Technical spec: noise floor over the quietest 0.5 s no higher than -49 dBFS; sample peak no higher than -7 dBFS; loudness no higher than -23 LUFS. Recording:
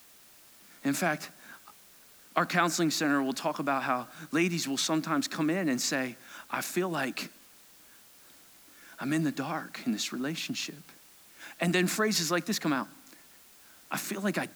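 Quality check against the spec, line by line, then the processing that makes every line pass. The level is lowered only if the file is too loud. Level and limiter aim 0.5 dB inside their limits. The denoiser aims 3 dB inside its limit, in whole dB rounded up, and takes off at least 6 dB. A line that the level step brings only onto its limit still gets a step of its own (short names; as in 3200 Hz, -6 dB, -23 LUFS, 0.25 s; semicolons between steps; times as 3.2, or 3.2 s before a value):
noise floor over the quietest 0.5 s -56 dBFS: OK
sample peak -11.0 dBFS: OK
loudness -30.5 LUFS: OK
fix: none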